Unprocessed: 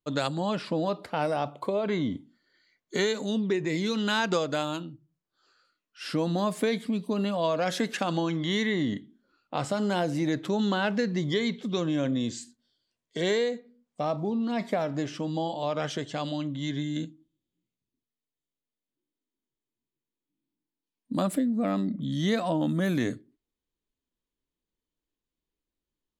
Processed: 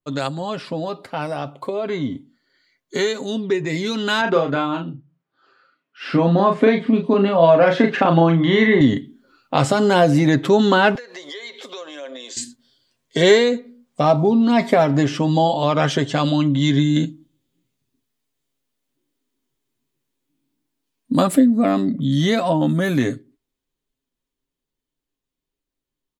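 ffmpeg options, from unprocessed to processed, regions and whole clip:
-filter_complex "[0:a]asettb=1/sr,asplit=3[a][b][c];[a]atrim=end=4.214[d];[b]atrim=start=4.21:end=8.81,asetpts=PTS-STARTPTS,afade=t=in:d=0.004:c=qsin,afade=t=out:st=4.596:d=0.004:c=qsin,highpass=110,lowpass=2.4k,asplit=2[e][f];[f]adelay=36,volume=-5dB[g];[e][g]amix=inputs=2:normalize=0,atrim=end_sample=202860[h];[c]atrim=start=8.806[i];[d][h]acrossfade=d=0.004:c1=hsin:c2=qsin[j];[j][i]acrossfade=d=0.004:c1=qsin:c2=hsin,asettb=1/sr,asplit=3[k][l][m];[k]atrim=end=10.954[n];[l]atrim=start=10.95:end=12.37,asetpts=PTS-STARTPTS,afade=t=in:d=0.004:c=qsin,afade=t=out:st=1.416:d=0.004:c=qsin,highpass=f=480:w=0.5412,highpass=f=480:w=1.3066,acompressor=threshold=-46dB:ratio=5:attack=3.2:release=140:knee=1:detection=peak[o];[m]atrim=start=12.366[p];[n][o]acrossfade=d=0.004:c1=hsin:c2=qsin[q];[q][p]acrossfade=d=0.004:c1=qsin:c2=hsin,aecho=1:1:7.5:0.45,dynaudnorm=f=730:g=13:m=11.5dB,adynamicequalizer=threshold=0.0224:dfrequency=2800:dqfactor=0.7:tfrequency=2800:tqfactor=0.7:attack=5:release=100:ratio=0.375:range=2.5:mode=cutabove:tftype=highshelf,volume=2.5dB"

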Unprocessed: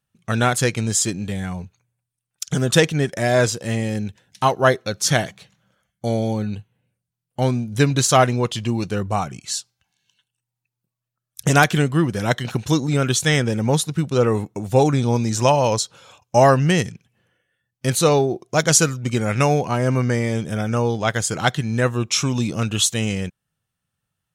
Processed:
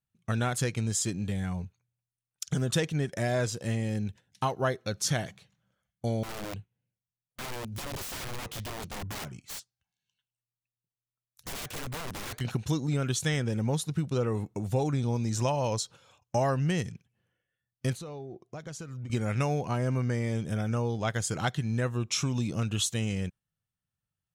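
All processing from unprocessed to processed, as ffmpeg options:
-filter_complex "[0:a]asettb=1/sr,asplit=3[a][b][c];[a]atrim=end=6.234[d];[b]atrim=start=6.23:end=12.41,asetpts=PTS-STARTPTS,afade=t=in:d=0.004:c=qsin,afade=t=out:st=6.176:d=0.004:c=qsin,acompressor=threshold=-19dB:ratio=2.5:attack=3.2:release=140:knee=1:detection=peak,flanger=delay=0.9:depth=9.2:regen=-78:speed=1.1:shape=triangular,aeval=exprs='(mod(20*val(0)+1,2)-1)/20':c=same[e];[c]atrim=start=12.406[f];[d][e]acrossfade=d=0.004:c1=hsin:c2=qsin[g];[g][f]acrossfade=d=0.004:c1=qsin:c2=hsin,asettb=1/sr,asplit=3[h][i][j];[h]atrim=end=17.934[k];[i]atrim=start=17.93:end=19.1,asetpts=PTS-STARTPTS,afade=t=in:d=0.004:c=qsin,afade=t=out:st=1.166:d=0.004:c=qsin,highshelf=f=4.6k:g=-10.5,acompressor=threshold=-31dB:ratio=10:attack=3.2:release=140:knee=1:detection=peak[l];[j]atrim=start=19.096[m];[k][l]acrossfade=d=0.004:c1=hsin:c2=qsin[n];[n][m]acrossfade=d=0.004:c1=qsin:c2=hsin,lowshelf=f=150:g=7,agate=range=-6dB:threshold=-37dB:ratio=16:detection=peak,acompressor=threshold=-19dB:ratio=2.5,volume=-7.5dB"

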